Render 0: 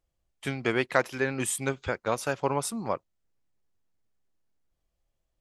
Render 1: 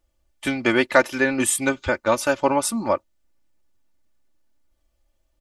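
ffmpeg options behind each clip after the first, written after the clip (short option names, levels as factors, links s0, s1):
-af "aecho=1:1:3.4:0.7,volume=2.11"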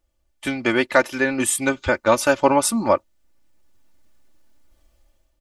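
-af "dynaudnorm=f=240:g=5:m=3.76,volume=0.891"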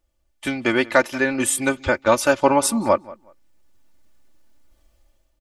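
-filter_complex "[0:a]asplit=2[s0][s1];[s1]adelay=185,lowpass=f=3200:p=1,volume=0.0944,asplit=2[s2][s3];[s3]adelay=185,lowpass=f=3200:p=1,volume=0.21[s4];[s0][s2][s4]amix=inputs=3:normalize=0"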